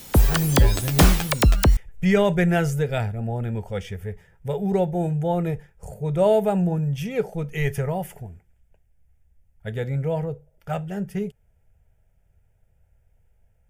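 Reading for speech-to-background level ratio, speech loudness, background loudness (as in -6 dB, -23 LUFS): -4.5 dB, -25.0 LUFS, -20.5 LUFS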